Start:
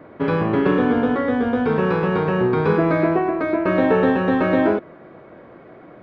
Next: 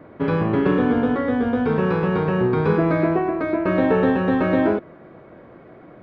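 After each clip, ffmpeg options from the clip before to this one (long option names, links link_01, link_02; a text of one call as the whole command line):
ffmpeg -i in.wav -af "lowshelf=frequency=200:gain=5.5,volume=-2.5dB" out.wav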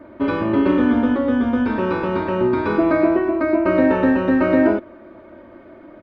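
ffmpeg -i in.wav -af "aecho=1:1:3.3:0.99,volume=-1dB" out.wav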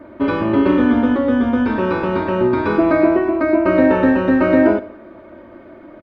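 ffmpeg -i in.wav -af "aecho=1:1:74|148|222|296:0.112|0.0583|0.0303|0.0158,volume=2.5dB" out.wav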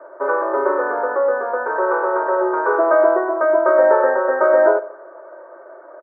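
ffmpeg -i in.wav -af "asuperpass=centerf=820:order=12:qfactor=0.67,volume=4dB" out.wav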